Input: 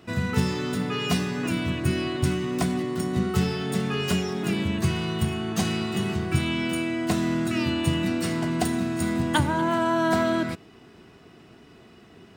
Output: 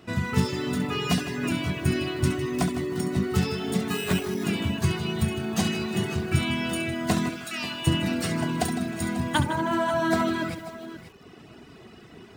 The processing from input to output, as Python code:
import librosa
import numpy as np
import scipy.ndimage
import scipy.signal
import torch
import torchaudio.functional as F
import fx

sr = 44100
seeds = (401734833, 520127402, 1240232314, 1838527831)

y = fx.sample_hold(x, sr, seeds[0], rate_hz=5500.0, jitter_pct=0, at=(3.88, 4.44))
y = fx.highpass(y, sr, hz=1300.0, slope=6, at=(7.29, 7.87))
y = fx.echo_multitap(y, sr, ms=(68, 156, 538), db=(-7.0, -19.0, -15.0))
y = fx.dereverb_blind(y, sr, rt60_s=0.71)
y = fx.rider(y, sr, range_db=10, speed_s=2.0)
y = fx.echo_crushed(y, sr, ms=156, feedback_pct=35, bits=7, wet_db=-14)